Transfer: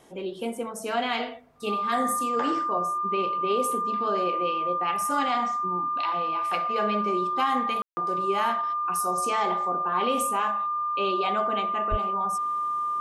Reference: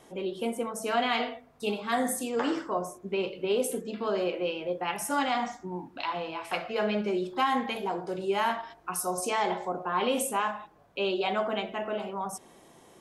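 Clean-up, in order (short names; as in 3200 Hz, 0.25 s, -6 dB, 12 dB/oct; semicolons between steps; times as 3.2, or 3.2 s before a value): notch 1200 Hz, Q 30; 11.9–12.02 HPF 140 Hz 24 dB/oct; room tone fill 7.82–7.97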